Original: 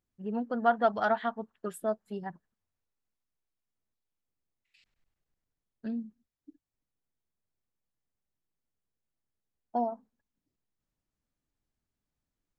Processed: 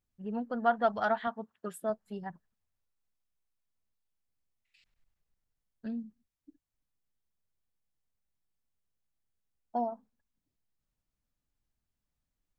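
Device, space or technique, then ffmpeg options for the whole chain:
low shelf boost with a cut just above: -filter_complex "[0:a]asettb=1/sr,asplit=3[s0][s1][s2];[s0]atrim=end=1.274[s3];[s1]atrim=start=1.27:end=1.9,asetpts=PTS-STARTPTS,afade=t=in:d=0.004:c=qsin,afade=t=out:st=0.626:d=0.004:c=qsin,highpass=95[s4];[s2]atrim=start=1.896[s5];[s3][s4]acrossfade=d=0.004:c1=hsin:c2=qsin[s6];[s6][s5]acrossfade=d=0.004:c1=qsin:c2=hsin,lowshelf=f=66:g=6.5,equalizer=f=340:t=o:w=0.87:g=-3.5,volume=0.841"

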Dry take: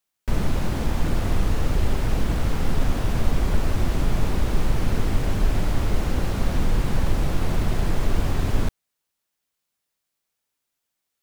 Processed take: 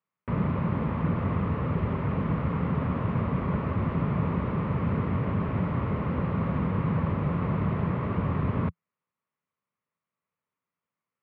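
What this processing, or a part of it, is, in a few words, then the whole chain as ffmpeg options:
bass cabinet: -af "highpass=f=86:w=0.5412,highpass=f=86:w=1.3066,equalizer=f=170:t=q:w=4:g=6,equalizer=f=330:t=q:w=4:g=-6,equalizer=f=750:t=q:w=4:g=-8,equalizer=f=1100:t=q:w=4:g=6,equalizer=f=1600:t=q:w=4:g=-7,lowpass=f=2100:w=0.5412,lowpass=f=2100:w=1.3066"

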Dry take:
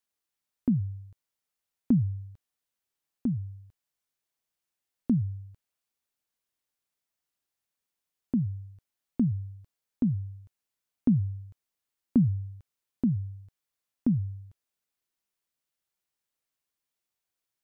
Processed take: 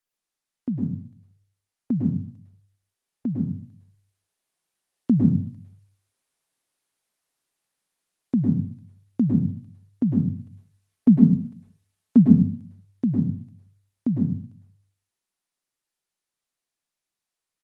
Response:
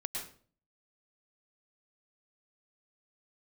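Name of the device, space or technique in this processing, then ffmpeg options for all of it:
far-field microphone of a smart speaker: -filter_complex "[0:a]asplit=3[s0][s1][s2];[s0]afade=t=out:st=10.37:d=0.02[s3];[s1]aecho=1:1:4.6:0.88,afade=t=in:st=10.37:d=0.02,afade=t=out:st=12.28:d=0.02[s4];[s2]afade=t=in:st=12.28:d=0.02[s5];[s3][s4][s5]amix=inputs=3:normalize=0[s6];[1:a]atrim=start_sample=2205[s7];[s6][s7]afir=irnorm=-1:irlink=0,highpass=120,dynaudnorm=f=470:g=17:m=3.55" -ar 48000 -c:a libopus -b:a 24k

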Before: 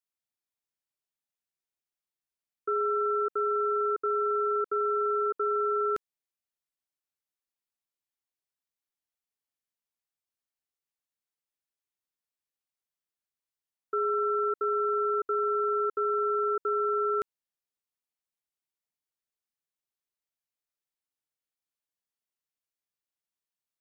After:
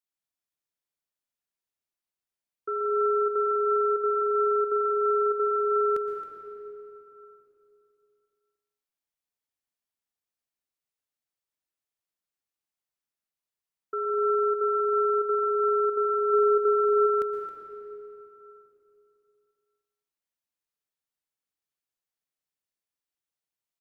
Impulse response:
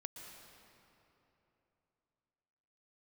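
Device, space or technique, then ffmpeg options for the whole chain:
cave: -filter_complex "[0:a]aecho=1:1:270:0.178[s0];[1:a]atrim=start_sample=2205[s1];[s0][s1]afir=irnorm=-1:irlink=0,asplit=3[s2][s3][s4];[s2]afade=t=out:st=16.32:d=0.02[s5];[s3]lowshelf=f=460:g=7.5,afade=t=in:st=16.32:d=0.02,afade=t=out:st=17.06:d=0.02[s6];[s4]afade=t=in:st=17.06:d=0.02[s7];[s5][s6][s7]amix=inputs=3:normalize=0,volume=1.5"

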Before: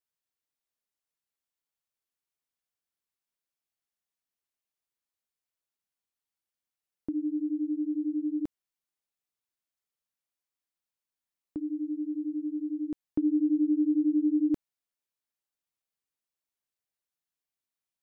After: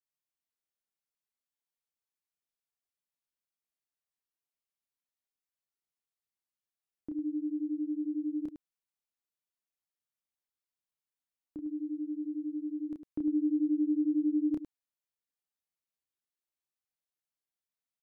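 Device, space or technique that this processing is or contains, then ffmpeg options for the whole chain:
slapback doubling: -filter_complex "[0:a]asplit=3[s0][s1][s2];[s1]adelay=30,volume=0.596[s3];[s2]adelay=104,volume=0.355[s4];[s0][s3][s4]amix=inputs=3:normalize=0,volume=0.422"

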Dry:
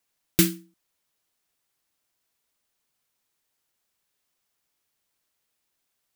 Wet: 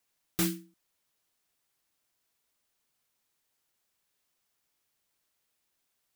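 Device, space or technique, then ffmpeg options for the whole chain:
saturation between pre-emphasis and de-emphasis: -af "highshelf=f=2300:g=10,asoftclip=type=tanh:threshold=0.15,highshelf=f=2300:g=-10,volume=0.891"

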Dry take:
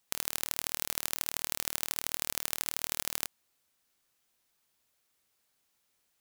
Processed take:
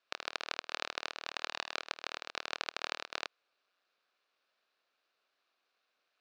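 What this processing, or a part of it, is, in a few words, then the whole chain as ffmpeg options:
voice changer toy: -filter_complex "[0:a]asettb=1/sr,asplit=3[s0][s1][s2];[s0]atrim=end=1.254[s3];[s1]atrim=start=1.25:end=1.88,asetpts=PTS-STARTPTS,afade=t=in:d=0.004:c=qsin,afade=t=out:st=0.626:d=0.004:c=qsin,asplit=2[s4][s5];[s5]adelay=27,volume=0.562[s6];[s4][s6]amix=inputs=2:normalize=0,atrim=end_sample=27783[s7];[s2]atrim=start=1.876[s8];[s3][s7]acrossfade=d=0.004:c1=hsin:c2=qsin[s9];[s9][s8]acrossfade=d=0.004:c1=qsin:c2=hsin,aeval=exprs='val(0)*sin(2*PI*450*n/s+450*0.8/0.4*sin(2*PI*0.4*n/s))':c=same,highpass=570,equalizer=f=900:t=q:w=4:g=-9,equalizer=f=2000:t=q:w=4:g=-9,equalizer=f=3200:t=q:w=4:g=-8,lowpass=f=3700:w=0.5412,lowpass=f=3700:w=1.3066,volume=2.99"

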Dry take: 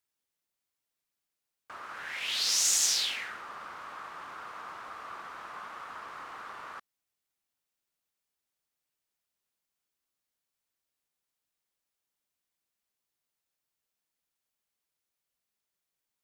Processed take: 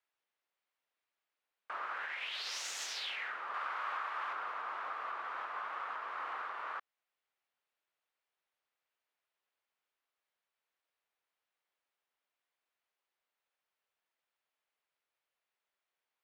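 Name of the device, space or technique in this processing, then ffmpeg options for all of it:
DJ mixer with the lows and highs turned down: -filter_complex "[0:a]acrossover=split=400 3400:gain=0.112 1 0.126[s0][s1][s2];[s0][s1][s2]amix=inputs=3:normalize=0,alimiter=level_in=3.55:limit=0.0631:level=0:latency=1:release=332,volume=0.282,asettb=1/sr,asplit=3[s3][s4][s5];[s3]atrim=end=3.544[s6];[s4]atrim=start=3.54:end=4.33,asetpts=PTS-STARTPTS,afade=t=in:d=0.004:c=qsin,afade=t=out:st=0.786:d=0.004:c=qsin,tiltshelf=f=630:g=-4.5[s7];[s5]atrim=start=4.326[s8];[s6][s7]acrossfade=d=0.004:c1=hsin:c2=qsin[s9];[s9][s8]acrossfade=d=0.004:c1=qsin:c2=hsin,volume=1.58"

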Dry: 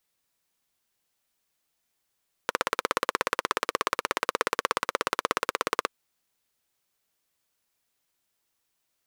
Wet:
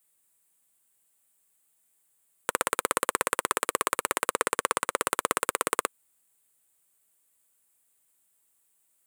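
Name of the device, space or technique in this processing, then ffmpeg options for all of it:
budget condenser microphone: -filter_complex "[0:a]highpass=78,highshelf=f=6800:t=q:w=3:g=7.5,asettb=1/sr,asplit=3[s0][s1][s2];[s0]atrim=end=4.294[s3];[s1]atrim=start=4.29:end=4.98,asetpts=PTS-STARTPTS,afade=t=in:d=0.004:c=qsin,afade=t=out:st=0.686:d=0.004:c=qsin,equalizer=f=16000:w=1:g=-8.5[s4];[s2]atrim=start=4.976[s5];[s3][s4]acrossfade=d=0.004:c1=hsin:c2=qsin[s6];[s6][s5]acrossfade=d=0.004:c1=qsin:c2=hsin"

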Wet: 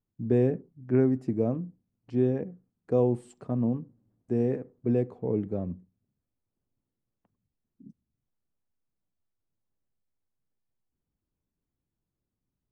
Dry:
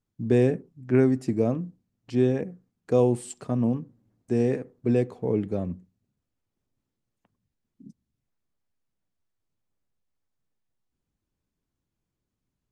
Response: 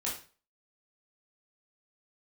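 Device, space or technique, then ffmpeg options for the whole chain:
through cloth: -af "highshelf=f=2200:g=-16,volume=0.75"

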